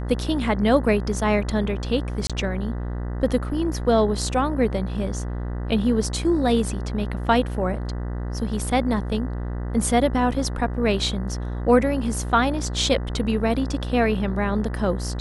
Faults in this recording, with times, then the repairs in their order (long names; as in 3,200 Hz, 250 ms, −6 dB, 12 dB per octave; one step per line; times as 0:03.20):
mains buzz 60 Hz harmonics 33 −28 dBFS
0:02.27–0:02.30: drop-out 26 ms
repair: hum removal 60 Hz, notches 33
repair the gap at 0:02.27, 26 ms